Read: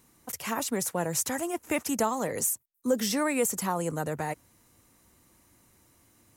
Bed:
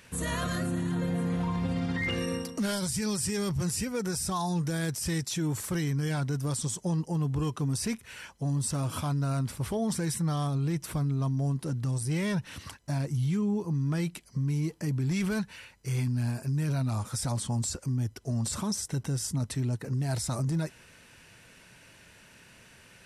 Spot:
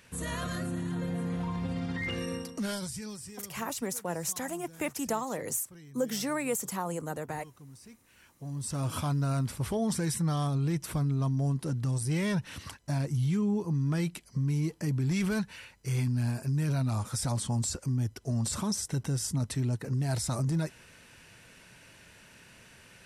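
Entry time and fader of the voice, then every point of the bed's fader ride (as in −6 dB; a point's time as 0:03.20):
3.10 s, −4.5 dB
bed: 0:02.73 −3.5 dB
0:03.60 −21 dB
0:08.01 −21 dB
0:08.87 0 dB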